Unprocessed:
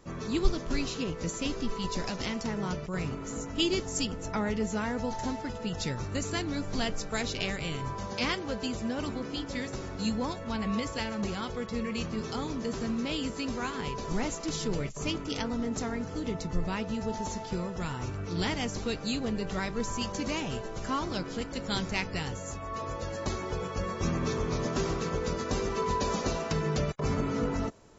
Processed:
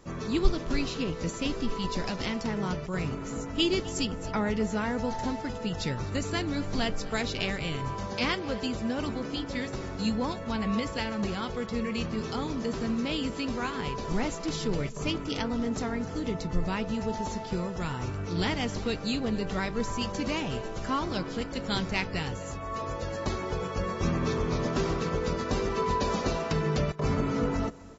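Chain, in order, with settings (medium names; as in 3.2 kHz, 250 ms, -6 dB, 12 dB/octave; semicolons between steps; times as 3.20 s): dynamic bell 6.7 kHz, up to -6 dB, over -54 dBFS, Q 2; on a send: delay 256 ms -20 dB; on the sum: trim +2 dB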